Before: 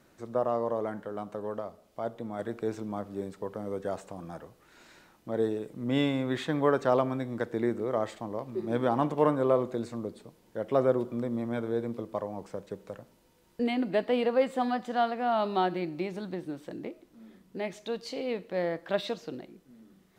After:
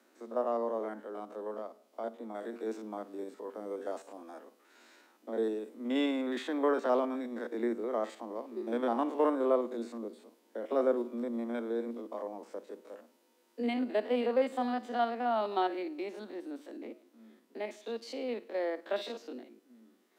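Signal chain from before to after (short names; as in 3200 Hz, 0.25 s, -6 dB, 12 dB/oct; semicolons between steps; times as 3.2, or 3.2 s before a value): stepped spectrum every 50 ms; steep high-pass 220 Hz 96 dB/oct; gain -2.5 dB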